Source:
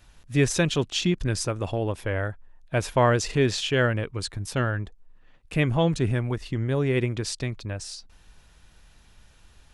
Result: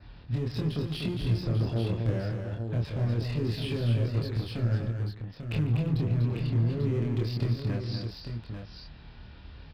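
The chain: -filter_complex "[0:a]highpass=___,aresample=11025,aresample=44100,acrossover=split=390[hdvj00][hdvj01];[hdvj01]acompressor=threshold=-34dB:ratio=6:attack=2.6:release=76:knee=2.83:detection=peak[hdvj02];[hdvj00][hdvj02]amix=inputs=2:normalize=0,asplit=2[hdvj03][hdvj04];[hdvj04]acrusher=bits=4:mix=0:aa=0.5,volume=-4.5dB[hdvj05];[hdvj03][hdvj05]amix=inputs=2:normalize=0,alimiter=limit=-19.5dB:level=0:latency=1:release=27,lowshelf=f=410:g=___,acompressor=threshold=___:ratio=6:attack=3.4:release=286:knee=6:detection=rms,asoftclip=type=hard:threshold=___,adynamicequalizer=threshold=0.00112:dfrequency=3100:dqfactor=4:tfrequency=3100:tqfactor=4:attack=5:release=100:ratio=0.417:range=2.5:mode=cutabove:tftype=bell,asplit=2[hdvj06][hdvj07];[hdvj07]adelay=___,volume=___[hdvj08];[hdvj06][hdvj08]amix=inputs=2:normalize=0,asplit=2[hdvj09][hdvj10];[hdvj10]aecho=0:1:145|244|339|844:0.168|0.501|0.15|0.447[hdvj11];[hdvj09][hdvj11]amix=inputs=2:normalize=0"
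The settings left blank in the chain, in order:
57, 10, -27dB, -25.5dB, 26, -2dB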